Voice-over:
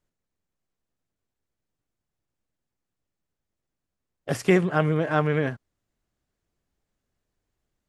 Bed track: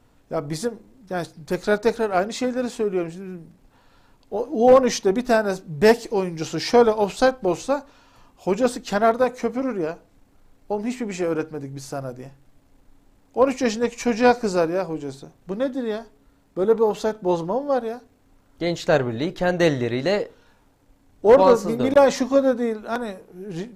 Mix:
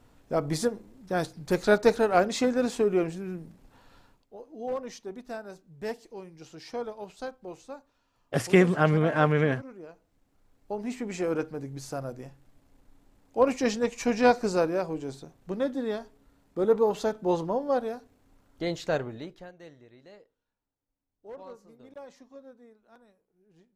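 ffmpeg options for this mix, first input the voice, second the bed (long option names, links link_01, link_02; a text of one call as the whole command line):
ffmpeg -i stem1.wav -i stem2.wav -filter_complex "[0:a]adelay=4050,volume=0dB[link_01];[1:a]volume=14dB,afade=type=out:start_time=3.97:duration=0.3:silence=0.11885,afade=type=in:start_time=9.88:duration=1.47:silence=0.177828,afade=type=out:start_time=18.44:duration=1.08:silence=0.0501187[link_02];[link_01][link_02]amix=inputs=2:normalize=0" out.wav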